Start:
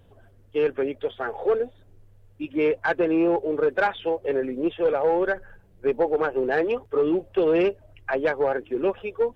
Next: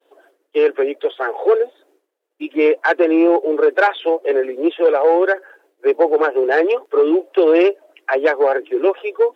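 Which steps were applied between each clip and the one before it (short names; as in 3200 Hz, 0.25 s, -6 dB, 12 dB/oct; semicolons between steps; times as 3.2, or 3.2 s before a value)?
steep high-pass 300 Hz 72 dB/oct; expander -59 dBFS; gain +8 dB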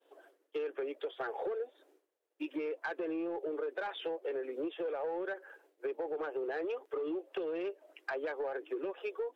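limiter -10 dBFS, peak gain reduction 8 dB; compressor 6:1, threshold -25 dBFS, peak gain reduction 11 dB; soft clip -19 dBFS, distortion -23 dB; gain -8.5 dB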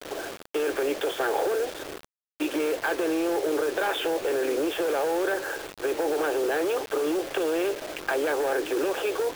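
per-bin compression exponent 0.6; in parallel at -1.5 dB: negative-ratio compressor -36 dBFS, ratio -0.5; on the sum: bit-crush 7-bit; gain +4.5 dB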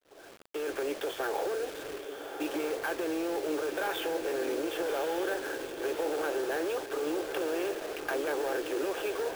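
opening faded in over 0.74 s; diffused feedback echo 1.153 s, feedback 40%, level -7 dB; sample-rate reducer 16000 Hz; gain -6.5 dB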